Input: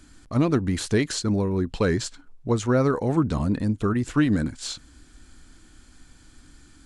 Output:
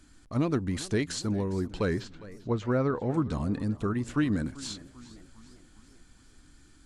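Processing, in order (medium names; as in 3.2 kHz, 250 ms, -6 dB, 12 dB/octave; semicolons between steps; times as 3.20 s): 1.94–3.14 s: low-pass 3.3 kHz 12 dB/octave; modulated delay 399 ms, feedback 52%, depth 194 cents, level -18.5 dB; trim -6 dB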